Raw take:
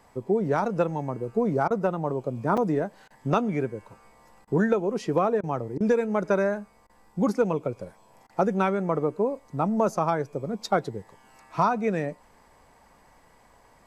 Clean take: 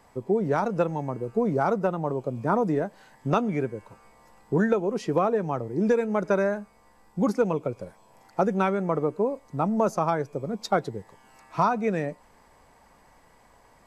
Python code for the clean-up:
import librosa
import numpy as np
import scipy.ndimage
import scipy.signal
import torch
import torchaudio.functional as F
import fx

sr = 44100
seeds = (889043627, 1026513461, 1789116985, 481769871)

y = fx.fix_interpolate(x, sr, at_s=(2.57,), length_ms=5.4)
y = fx.fix_interpolate(y, sr, at_s=(1.68, 3.08, 4.45, 5.41, 5.78, 6.87, 8.27), length_ms=23.0)